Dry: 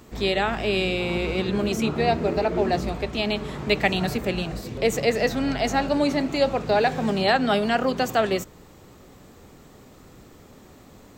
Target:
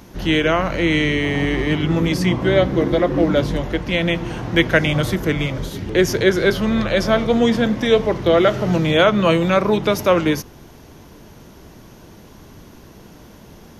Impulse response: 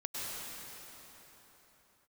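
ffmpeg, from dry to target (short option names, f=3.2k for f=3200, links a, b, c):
-af "asetrate=35721,aresample=44100,volume=6dB"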